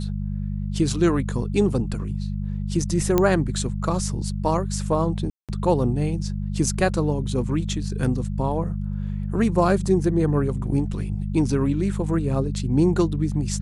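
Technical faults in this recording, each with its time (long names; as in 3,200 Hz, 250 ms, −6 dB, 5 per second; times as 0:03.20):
mains hum 50 Hz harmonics 4 −27 dBFS
0:03.18: click −6 dBFS
0:05.30–0:05.49: drop-out 187 ms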